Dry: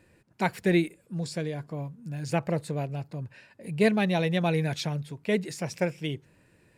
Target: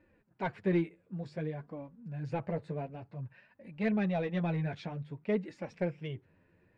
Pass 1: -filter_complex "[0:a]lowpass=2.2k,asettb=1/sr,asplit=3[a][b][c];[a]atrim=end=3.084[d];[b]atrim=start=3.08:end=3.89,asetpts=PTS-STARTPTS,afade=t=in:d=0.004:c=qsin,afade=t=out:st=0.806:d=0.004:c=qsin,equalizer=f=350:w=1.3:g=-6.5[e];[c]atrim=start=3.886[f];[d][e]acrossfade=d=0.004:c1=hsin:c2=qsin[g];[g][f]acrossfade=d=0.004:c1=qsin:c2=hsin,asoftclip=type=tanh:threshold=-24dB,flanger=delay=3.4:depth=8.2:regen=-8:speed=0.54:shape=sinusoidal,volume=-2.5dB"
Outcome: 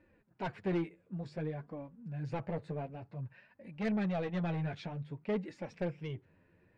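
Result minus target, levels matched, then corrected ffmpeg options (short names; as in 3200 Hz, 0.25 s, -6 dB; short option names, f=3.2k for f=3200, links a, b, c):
soft clip: distortion +10 dB
-filter_complex "[0:a]lowpass=2.2k,asettb=1/sr,asplit=3[a][b][c];[a]atrim=end=3.084[d];[b]atrim=start=3.08:end=3.89,asetpts=PTS-STARTPTS,afade=t=in:d=0.004:c=qsin,afade=t=out:st=0.806:d=0.004:c=qsin,equalizer=f=350:w=1.3:g=-6.5[e];[c]atrim=start=3.886[f];[d][e]acrossfade=d=0.004:c1=hsin:c2=qsin[g];[g][f]acrossfade=d=0.004:c1=qsin:c2=hsin,asoftclip=type=tanh:threshold=-15.5dB,flanger=delay=3.4:depth=8.2:regen=-8:speed=0.54:shape=sinusoidal,volume=-2.5dB"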